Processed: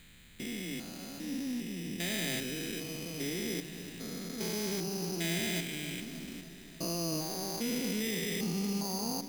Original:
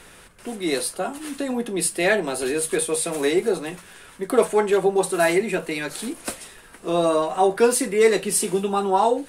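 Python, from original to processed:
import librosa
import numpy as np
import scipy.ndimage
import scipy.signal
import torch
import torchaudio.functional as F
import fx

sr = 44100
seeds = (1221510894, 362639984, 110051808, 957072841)

y = fx.spec_steps(x, sr, hold_ms=400)
y = fx.high_shelf(y, sr, hz=4000.0, db=6.0)
y = fx.echo_filtered(y, sr, ms=294, feedback_pct=71, hz=1800.0, wet_db=-12.5)
y = np.repeat(scipy.signal.resample_poly(y, 1, 8), 8)[:len(y)]
y = fx.band_shelf(y, sr, hz=740.0, db=-15.0, octaves=2.4)
y = F.gain(torch.from_numpy(y), -2.5).numpy()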